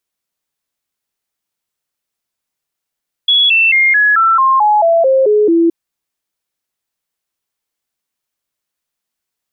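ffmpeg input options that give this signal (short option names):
-f lavfi -i "aevalsrc='0.447*clip(min(mod(t,0.22),0.22-mod(t,0.22))/0.005,0,1)*sin(2*PI*3370*pow(2,-floor(t/0.22)/3)*mod(t,0.22))':d=2.42:s=44100"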